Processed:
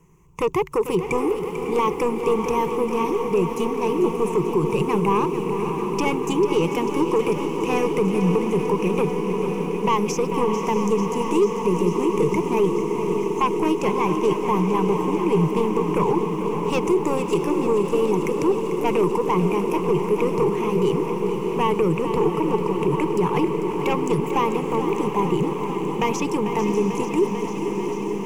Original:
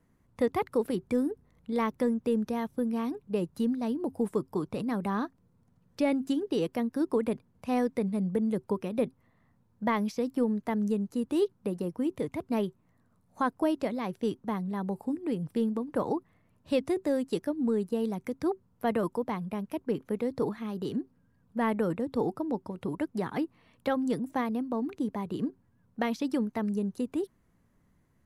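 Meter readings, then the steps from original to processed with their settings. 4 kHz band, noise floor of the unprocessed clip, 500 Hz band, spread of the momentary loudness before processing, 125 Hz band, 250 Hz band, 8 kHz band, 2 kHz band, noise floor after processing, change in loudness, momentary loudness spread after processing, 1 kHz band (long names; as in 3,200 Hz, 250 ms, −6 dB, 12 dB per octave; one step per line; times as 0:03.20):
+11.0 dB, −68 dBFS, +11.5 dB, 6 LU, +13.0 dB, +7.0 dB, can't be measured, +9.5 dB, −28 dBFS, +9.5 dB, 4 LU, +13.0 dB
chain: parametric band 10,000 Hz +10.5 dB 0.5 octaves
in parallel at −10 dB: sine wavefolder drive 10 dB, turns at −14 dBFS
on the sum: EQ curve with evenly spaced ripples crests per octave 0.74, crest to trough 18 dB
on a send: feedback delay with all-pass diffusion 645 ms, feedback 78%, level −9.5 dB
on the sum: brickwall limiter −13 dBFS, peak gain reduction 7.5 dB
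feedback echo at a low word length 444 ms, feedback 80%, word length 9 bits, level −10.5 dB
level +1 dB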